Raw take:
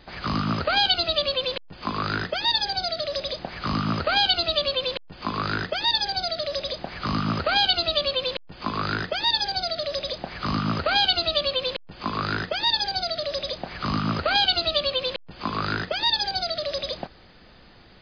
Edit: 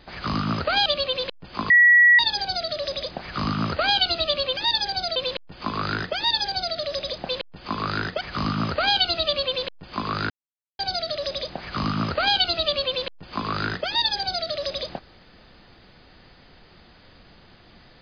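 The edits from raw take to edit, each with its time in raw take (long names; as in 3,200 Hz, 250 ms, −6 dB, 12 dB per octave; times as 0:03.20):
0:00.86–0:01.14: remove
0:01.98–0:02.47: beep over 1,930 Hz −10.5 dBFS
0:04.85–0:05.77: move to 0:10.29
0:06.36–0:08.16: remove
0:12.38–0:12.87: silence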